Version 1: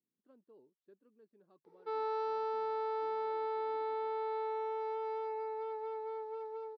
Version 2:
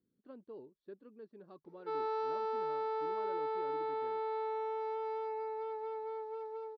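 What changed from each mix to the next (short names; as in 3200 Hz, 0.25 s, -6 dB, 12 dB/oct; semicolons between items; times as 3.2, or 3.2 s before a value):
speech +12.0 dB; master: remove HPF 130 Hz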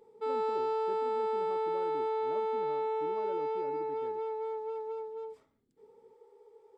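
background: entry -1.65 s; master: remove rippled Chebyshev low-pass 5900 Hz, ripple 6 dB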